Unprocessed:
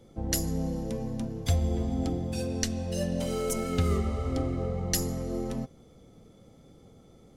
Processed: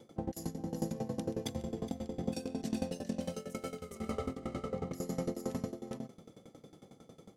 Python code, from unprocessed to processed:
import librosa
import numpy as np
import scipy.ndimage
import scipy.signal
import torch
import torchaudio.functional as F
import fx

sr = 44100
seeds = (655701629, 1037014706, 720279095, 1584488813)

y = scipy.signal.sosfilt(scipy.signal.butter(2, 150.0, 'highpass', fs=sr, output='sos'), x)
y = fx.over_compress(y, sr, threshold_db=-35.0, ratio=-0.5)
y = y + 10.0 ** (-3.5 / 20.0) * np.pad(y, (int(417 * sr / 1000.0), 0))[:len(y)]
y = fx.tremolo_decay(y, sr, direction='decaying', hz=11.0, depth_db=19)
y = y * 10.0 ** (2.0 / 20.0)